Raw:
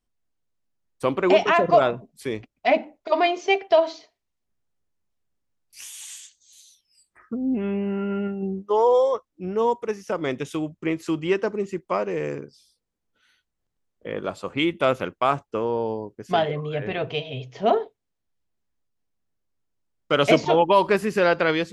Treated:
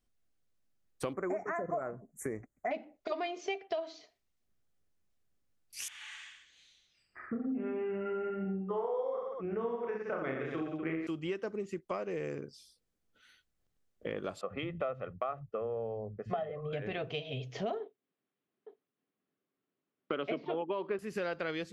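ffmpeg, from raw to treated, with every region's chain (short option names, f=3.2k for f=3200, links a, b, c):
-filter_complex "[0:a]asettb=1/sr,asplit=3[a][b][c];[a]atrim=end=1.134[d];[b]atrim=start=1.13:end=2.71,asetpts=PTS-STARTPTS,afade=t=in:d=0.004:c=qsin,afade=t=out:st=1.576:d=0.004:c=qsin,asuperstop=centerf=3800:order=12:qfactor=0.82,equalizer=f=5.6k:w=1.8:g=9.5[e];[c]atrim=start=2.706[f];[d][e]acrossfade=d=0.004:c1=hsin:c2=qsin[g];[g][f]acrossfade=d=0.004:c1=qsin:c2=hsin,asettb=1/sr,asplit=3[h][i][j];[h]atrim=end=5.884[k];[i]atrim=start=5.88:end=11.07,asetpts=PTS-STARTPTS,afade=t=in:d=0.004:c=qsin,afade=t=out:st=5.186:d=0.004:c=qsin,lowpass=f=1.8k:t=q:w=1.6,bandreject=f=50:t=h:w=6,bandreject=f=100:t=h:w=6,bandreject=f=150:t=h:w=6,bandreject=f=200:t=h:w=6,bandreject=f=250:t=h:w=6,bandreject=f=300:t=h:w=6,aecho=1:1:30|67.5|114.4|173|246.2:0.794|0.631|0.501|0.398|0.316,atrim=end_sample=228879[l];[j]atrim=start=11.066[m];[k][l]acrossfade=d=0.004:c1=hsin:c2=qsin[n];[n][m]acrossfade=d=0.004:c1=qsin:c2=hsin,asettb=1/sr,asplit=3[o][p][q];[o]atrim=end=14.414[r];[p]atrim=start=14.41:end=16.73,asetpts=PTS-STARTPTS,afade=t=in:d=0.004:c=qsin,afade=t=out:st=2.316:d=0.004:c=qsin,lowpass=1.6k,aecho=1:1:1.6:0.68,atrim=end_sample=102312,acrossover=split=190[s][t];[s]adelay=70[u];[u][t]amix=inputs=2:normalize=0,atrim=end_sample=102312[v];[q]atrim=start=16.726[w];[r][v]acrossfade=d=0.004:c1=hsin:c2=qsin[x];[x][w]acrossfade=d=0.004:c1=qsin:c2=hsin,asettb=1/sr,asplit=3[y][z][aa];[y]atrim=end=17.804[ab];[z]atrim=start=17.8:end=20.99,asetpts=PTS-STARTPTS,afade=t=in:d=0.004:c=qsin,afade=t=out:st=3.186:d=0.004:c=qsin,highpass=f=150:w=0.5412,highpass=f=150:w=1.3066,equalizer=f=270:t=q:w=4:g=5,equalizer=f=390:t=q:w=4:g=7,equalizer=f=1.1k:t=q:w=4:g=4,lowpass=f=3.4k:w=0.5412,lowpass=f=3.4k:w=1.3066,aecho=1:1:864:0.0668,atrim=end_sample=140679[ac];[aa]atrim=start=20.986[ad];[ab][ac]acrossfade=d=0.004:c1=hsin:c2=qsin[ae];[ae][ad]acrossfade=d=0.004:c1=qsin:c2=hsin,equalizer=f=940:w=6.4:g=-7,acompressor=threshold=-35dB:ratio=5"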